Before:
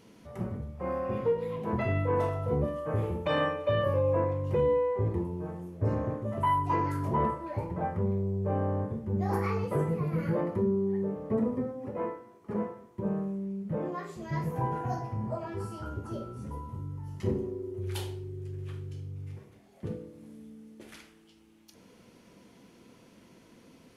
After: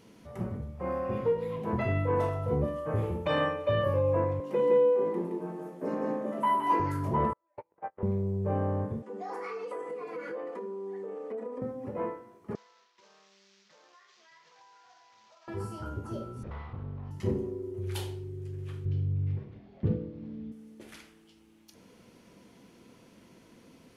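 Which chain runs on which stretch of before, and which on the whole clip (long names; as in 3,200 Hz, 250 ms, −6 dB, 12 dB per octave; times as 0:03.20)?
0:04.40–0:06.80: Butterworth high-pass 180 Hz 48 dB per octave + single-tap delay 168 ms −3.5 dB
0:07.33–0:08.03: noise gate −30 dBFS, range −37 dB + three-way crossover with the lows and the highs turned down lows −22 dB, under 390 Hz, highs −22 dB, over 3,500 Hz
0:09.02–0:11.62: elliptic band-pass filter 350–8,700 Hz, stop band 50 dB + comb filter 4.1 ms, depth 86% + downward compressor 4 to 1, threshold −35 dBFS
0:12.55–0:15.48: variable-slope delta modulation 32 kbit/s + high-pass filter 1,500 Hz + downward compressor 4 to 1, threshold −58 dBFS
0:16.43–0:17.11: lower of the sound and its delayed copy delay 1.6 ms + low-pass filter 4,000 Hz 24 dB per octave
0:18.85–0:20.52: low-pass filter 4,300 Hz 24 dB per octave + low-shelf EQ 320 Hz +11.5 dB
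whole clip: no processing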